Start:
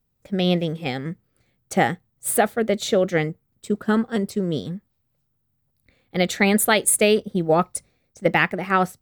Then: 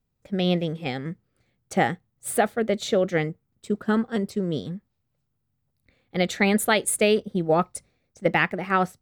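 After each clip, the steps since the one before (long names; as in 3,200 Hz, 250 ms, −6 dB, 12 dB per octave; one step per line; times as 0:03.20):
high-shelf EQ 9,600 Hz −8.5 dB
level −2.5 dB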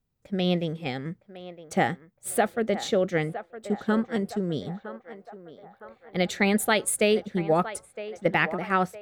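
feedback echo with a band-pass in the loop 962 ms, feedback 60%, band-pass 910 Hz, level −11 dB
level −2 dB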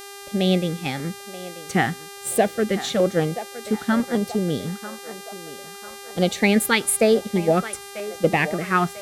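pitch vibrato 0.32 Hz 70 cents
auto-filter notch saw down 1 Hz 360–3,400 Hz
hum with harmonics 400 Hz, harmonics 33, −45 dBFS −3 dB per octave
level +5.5 dB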